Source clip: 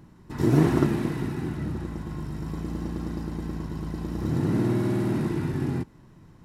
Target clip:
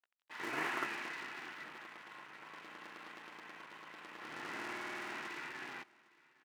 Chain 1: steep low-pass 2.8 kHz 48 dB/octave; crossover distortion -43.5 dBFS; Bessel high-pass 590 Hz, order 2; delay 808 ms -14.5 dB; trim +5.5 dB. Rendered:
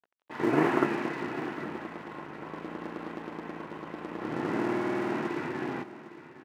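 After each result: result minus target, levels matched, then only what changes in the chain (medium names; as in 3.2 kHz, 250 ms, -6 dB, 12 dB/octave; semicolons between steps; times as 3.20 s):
500 Hz band +7.5 dB; echo-to-direct +8.5 dB
change: Bessel high-pass 2.2 kHz, order 2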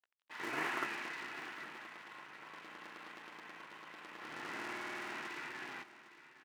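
echo-to-direct +8.5 dB
change: delay 808 ms -23 dB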